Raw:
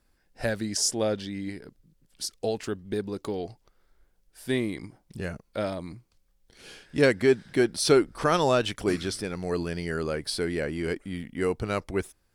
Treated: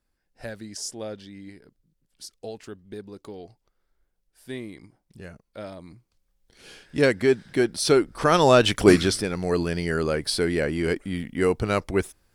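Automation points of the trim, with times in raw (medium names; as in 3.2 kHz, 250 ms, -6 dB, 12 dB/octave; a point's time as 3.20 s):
5.58 s -8 dB
6.83 s +1 dB
8.06 s +1 dB
8.90 s +11.5 dB
9.27 s +5 dB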